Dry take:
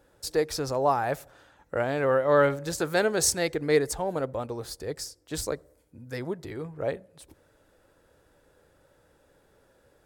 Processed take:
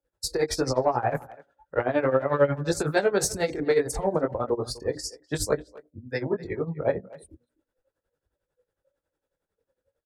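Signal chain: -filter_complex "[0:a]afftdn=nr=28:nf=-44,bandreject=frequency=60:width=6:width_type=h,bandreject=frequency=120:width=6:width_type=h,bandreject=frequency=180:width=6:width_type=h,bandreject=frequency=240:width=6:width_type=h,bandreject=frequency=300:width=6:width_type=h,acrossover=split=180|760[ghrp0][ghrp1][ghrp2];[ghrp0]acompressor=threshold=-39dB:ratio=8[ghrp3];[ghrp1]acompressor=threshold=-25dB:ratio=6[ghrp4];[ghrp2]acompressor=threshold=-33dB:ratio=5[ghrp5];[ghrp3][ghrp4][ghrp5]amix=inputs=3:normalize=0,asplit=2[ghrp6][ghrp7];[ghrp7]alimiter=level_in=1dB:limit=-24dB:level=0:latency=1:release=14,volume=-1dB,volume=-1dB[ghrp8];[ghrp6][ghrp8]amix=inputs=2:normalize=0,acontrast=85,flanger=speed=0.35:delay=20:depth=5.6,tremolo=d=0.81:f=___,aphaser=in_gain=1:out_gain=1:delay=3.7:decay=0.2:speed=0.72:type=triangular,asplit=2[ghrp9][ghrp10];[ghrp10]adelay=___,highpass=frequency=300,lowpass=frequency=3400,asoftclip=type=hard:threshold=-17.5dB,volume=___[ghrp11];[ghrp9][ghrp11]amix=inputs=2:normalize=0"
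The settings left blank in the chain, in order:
11, 250, -19dB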